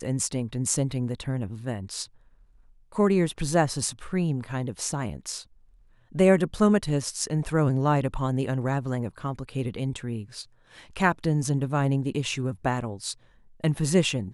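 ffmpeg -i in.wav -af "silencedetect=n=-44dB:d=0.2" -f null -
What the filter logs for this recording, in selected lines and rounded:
silence_start: 2.06
silence_end: 2.92 | silence_duration: 0.87
silence_start: 5.44
silence_end: 6.12 | silence_duration: 0.68
silence_start: 10.45
silence_end: 10.72 | silence_duration: 0.28
silence_start: 13.13
silence_end: 13.60 | silence_duration: 0.47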